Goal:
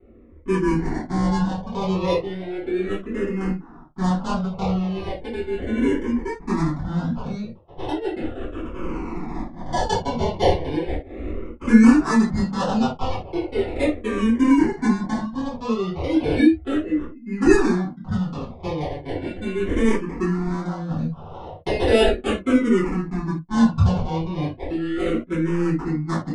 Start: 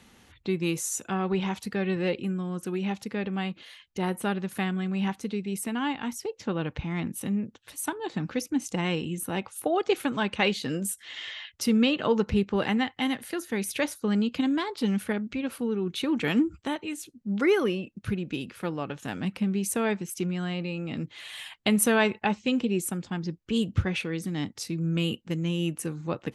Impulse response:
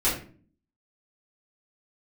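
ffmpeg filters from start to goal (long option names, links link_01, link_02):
-filter_complex "[0:a]acrusher=samples=27:mix=1:aa=0.000001:lfo=1:lforange=16.2:lforate=0.22,asettb=1/sr,asplit=3[link_01][link_02][link_03];[link_01]atrim=end=8.214[link_04];[link_02]atrim=start=8.21:end=9.73,asetpts=PTS-STARTPTS,afade=type=in:duration=0.004:curve=qsin,afade=type=out:start_time=1.516:duration=0.004:curve=qsin,aeval=exprs='(mod(33.5*val(0)+1,2)-1)/33.5':channel_layout=same[link_05];[link_03]atrim=start=9.726[link_06];[link_04][link_05]acrossfade=duration=0.004:curve1=hsin:curve2=qsin[link_07];[link_07][link_06]acrossfade=duration=0.004:curve1=qsin:curve2=hsin,adynamicsmooth=sensitivity=2.5:basefreq=1100,aresample=22050,aresample=44100[link_08];[1:a]atrim=start_sample=2205,afade=type=out:start_time=0.14:duration=0.01,atrim=end_sample=6615[link_09];[link_08][link_09]afir=irnorm=-1:irlink=0,asplit=2[link_10][link_11];[link_11]afreqshift=-0.36[link_12];[link_10][link_12]amix=inputs=2:normalize=1,volume=-3.5dB"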